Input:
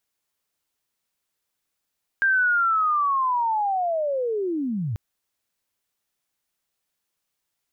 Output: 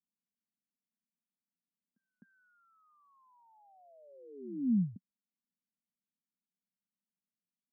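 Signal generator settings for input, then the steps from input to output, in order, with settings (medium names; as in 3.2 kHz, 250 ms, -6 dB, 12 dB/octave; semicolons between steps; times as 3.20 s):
sweep linear 1.6 kHz -> 95 Hz -16.5 dBFS -> -24 dBFS 2.74 s
Butterworth band-pass 210 Hz, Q 2.7; pre-echo 257 ms -21 dB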